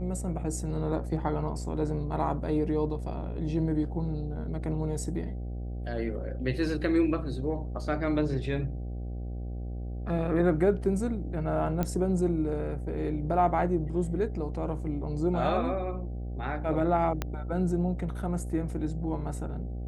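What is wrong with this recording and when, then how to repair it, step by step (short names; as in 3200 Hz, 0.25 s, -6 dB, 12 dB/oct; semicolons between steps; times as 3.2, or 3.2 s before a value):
buzz 60 Hz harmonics 13 -35 dBFS
11.83 pop -16 dBFS
17.22 pop -15 dBFS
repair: de-click; de-hum 60 Hz, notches 13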